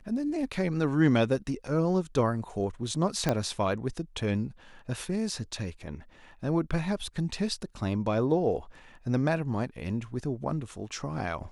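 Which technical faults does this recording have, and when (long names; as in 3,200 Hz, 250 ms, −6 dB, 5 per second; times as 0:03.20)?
0:03.29: click −12 dBFS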